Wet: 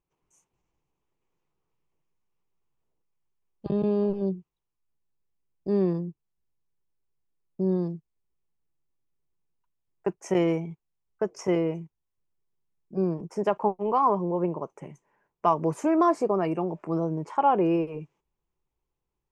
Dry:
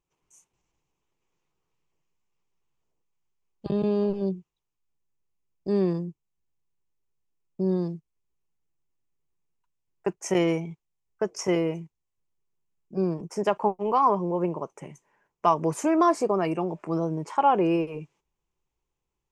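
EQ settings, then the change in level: treble shelf 2.4 kHz -9.5 dB; 0.0 dB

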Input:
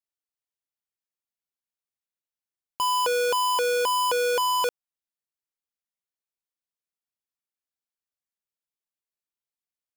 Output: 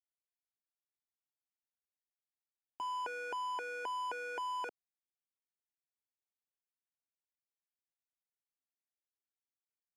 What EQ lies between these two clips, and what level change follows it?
high-pass 200 Hz 6 dB/octave; tape spacing loss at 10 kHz 23 dB; static phaser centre 770 Hz, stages 8; -5.5 dB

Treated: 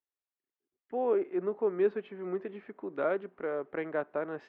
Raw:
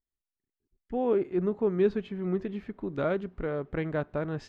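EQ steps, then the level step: high-pass 110 Hz; three-band isolator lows -21 dB, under 300 Hz, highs -22 dB, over 2.8 kHz; 0.0 dB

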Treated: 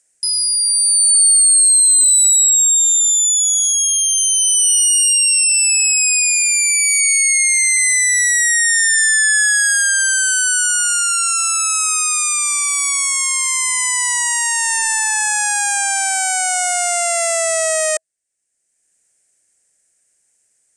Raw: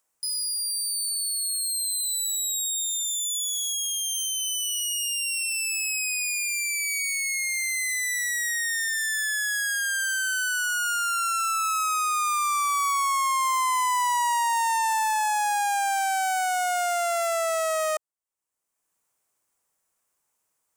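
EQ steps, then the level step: FFT filter 640 Hz 0 dB, 1.1 kHz -16 dB, 1.7 kHz +5 dB, 3.6 kHz -1 dB, 5.1 kHz +5 dB, 8.9 kHz +12 dB, 15 kHz -26 dB; +7.0 dB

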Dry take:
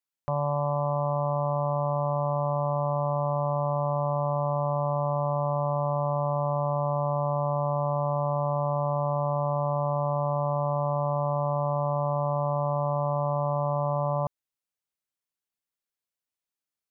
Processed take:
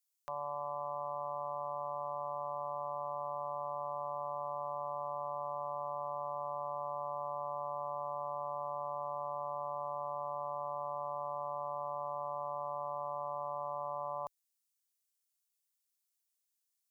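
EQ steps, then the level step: tone controls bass -14 dB, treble +13 dB; peaking EQ 88 Hz -14.5 dB 1.7 oct; peaking EQ 360 Hz -10 dB 2.2 oct; -4.5 dB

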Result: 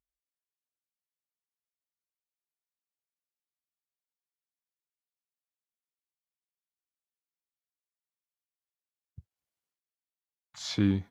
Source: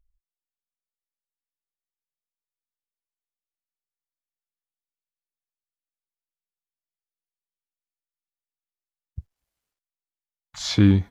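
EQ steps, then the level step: high-pass 110 Hz; -8.5 dB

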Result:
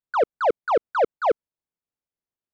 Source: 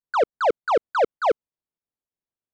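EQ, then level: treble shelf 3.3 kHz -9.5 dB; 0.0 dB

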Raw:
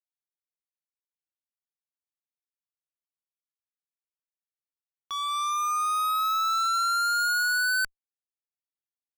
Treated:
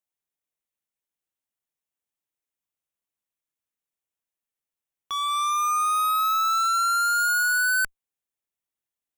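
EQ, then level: peaking EQ 1.4 kHz -2.5 dB; peaking EQ 4.6 kHz -9 dB 0.45 oct; +5.5 dB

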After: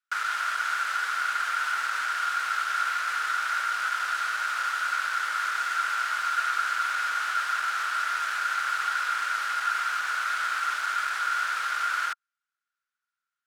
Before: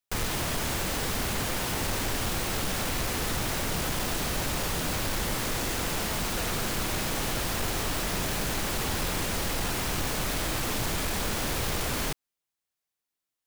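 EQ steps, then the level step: resonant high-pass 1.4 kHz, resonance Q 15; distance through air 51 m; -3.5 dB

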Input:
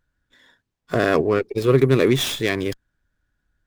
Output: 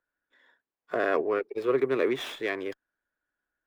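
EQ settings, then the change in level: three-band isolator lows -23 dB, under 310 Hz, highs -15 dB, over 2.7 kHz; -5.5 dB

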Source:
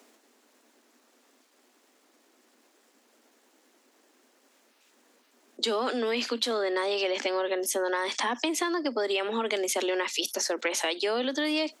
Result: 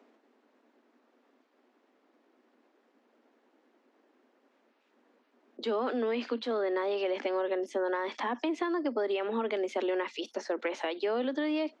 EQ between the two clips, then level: tape spacing loss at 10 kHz 35 dB; 0.0 dB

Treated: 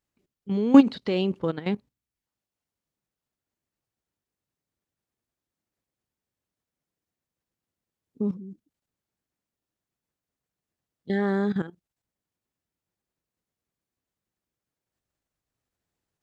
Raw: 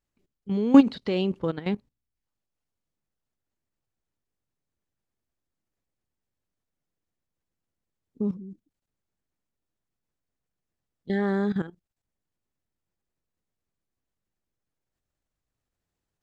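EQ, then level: high-pass 82 Hz 6 dB/octave; +1.0 dB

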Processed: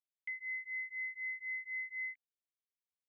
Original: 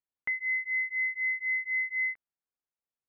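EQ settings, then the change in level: vowel filter i; differentiator; +11.5 dB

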